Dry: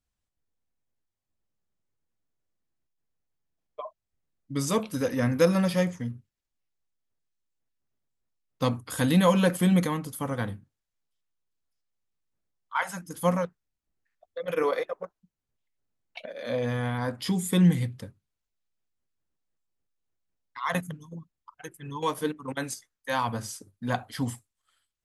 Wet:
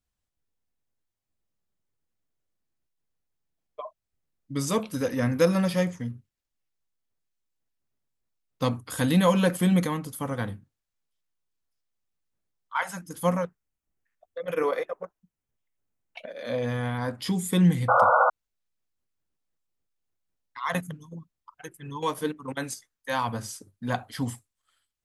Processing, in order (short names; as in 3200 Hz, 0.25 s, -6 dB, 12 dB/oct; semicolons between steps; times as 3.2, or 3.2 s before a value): 13.3–16.26 bell 4200 Hz -6 dB 0.61 oct; 17.88–18.3 painted sound noise 480–1500 Hz -19 dBFS